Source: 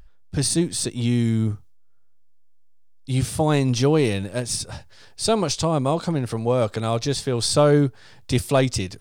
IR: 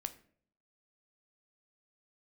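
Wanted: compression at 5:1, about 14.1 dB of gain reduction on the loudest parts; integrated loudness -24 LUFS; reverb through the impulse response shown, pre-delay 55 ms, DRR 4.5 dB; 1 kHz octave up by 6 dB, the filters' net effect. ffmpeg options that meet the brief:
-filter_complex "[0:a]equalizer=f=1000:t=o:g=8,acompressor=threshold=0.0501:ratio=5,asplit=2[s0][s1];[1:a]atrim=start_sample=2205,adelay=55[s2];[s1][s2]afir=irnorm=-1:irlink=0,volume=0.708[s3];[s0][s3]amix=inputs=2:normalize=0,volume=1.68"

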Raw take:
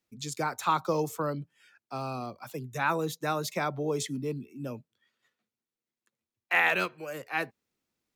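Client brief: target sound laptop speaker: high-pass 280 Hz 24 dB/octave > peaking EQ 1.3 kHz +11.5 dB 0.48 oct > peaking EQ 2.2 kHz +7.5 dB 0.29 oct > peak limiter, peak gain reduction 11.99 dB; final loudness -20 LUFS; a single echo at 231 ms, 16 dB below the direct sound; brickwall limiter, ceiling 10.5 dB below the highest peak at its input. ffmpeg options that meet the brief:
-af "alimiter=limit=0.1:level=0:latency=1,highpass=f=280:w=0.5412,highpass=f=280:w=1.3066,equalizer=f=1300:t=o:w=0.48:g=11.5,equalizer=f=2200:t=o:w=0.29:g=7.5,aecho=1:1:231:0.158,volume=5.96,alimiter=limit=0.335:level=0:latency=1"

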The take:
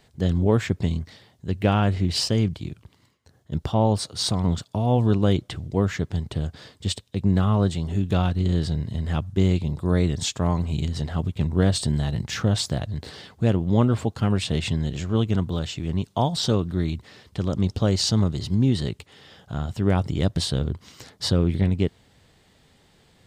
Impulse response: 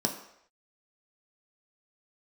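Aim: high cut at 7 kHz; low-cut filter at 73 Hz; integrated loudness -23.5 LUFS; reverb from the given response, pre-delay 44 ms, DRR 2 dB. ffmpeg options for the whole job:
-filter_complex "[0:a]highpass=73,lowpass=7000,asplit=2[s0][s1];[1:a]atrim=start_sample=2205,adelay=44[s2];[s1][s2]afir=irnorm=-1:irlink=0,volume=0.355[s3];[s0][s3]amix=inputs=2:normalize=0,volume=0.596"

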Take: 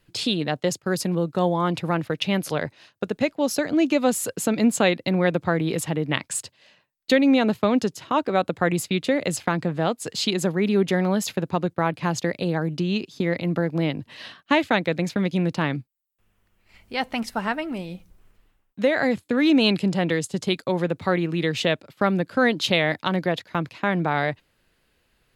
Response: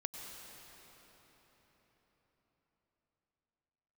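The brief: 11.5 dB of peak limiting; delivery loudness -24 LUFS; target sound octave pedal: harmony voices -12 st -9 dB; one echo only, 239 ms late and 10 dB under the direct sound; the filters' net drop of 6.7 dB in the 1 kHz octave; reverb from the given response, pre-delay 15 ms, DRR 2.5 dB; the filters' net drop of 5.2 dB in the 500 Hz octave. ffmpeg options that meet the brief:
-filter_complex "[0:a]equalizer=f=500:t=o:g=-4.5,equalizer=f=1000:t=o:g=-7.5,alimiter=limit=0.133:level=0:latency=1,aecho=1:1:239:0.316,asplit=2[s0][s1];[1:a]atrim=start_sample=2205,adelay=15[s2];[s1][s2]afir=irnorm=-1:irlink=0,volume=0.794[s3];[s0][s3]amix=inputs=2:normalize=0,asplit=2[s4][s5];[s5]asetrate=22050,aresample=44100,atempo=2,volume=0.355[s6];[s4][s6]amix=inputs=2:normalize=0,volume=1.26"

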